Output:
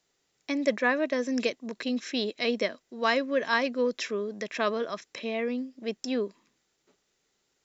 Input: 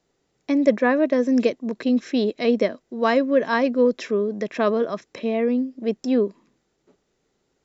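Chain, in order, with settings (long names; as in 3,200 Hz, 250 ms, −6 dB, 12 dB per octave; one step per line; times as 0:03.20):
tilt shelving filter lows −7 dB, about 1,100 Hz
level −4 dB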